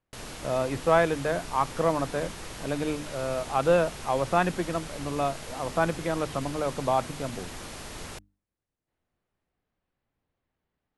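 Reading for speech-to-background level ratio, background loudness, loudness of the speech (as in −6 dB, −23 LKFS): 12.0 dB, −40.0 LKFS, −28.0 LKFS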